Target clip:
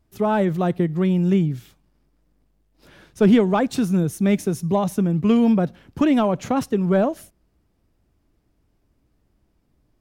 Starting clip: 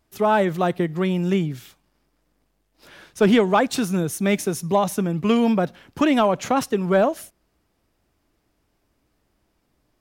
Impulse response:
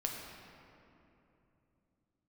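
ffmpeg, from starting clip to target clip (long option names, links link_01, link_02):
-af "lowshelf=frequency=350:gain=12,volume=-5.5dB"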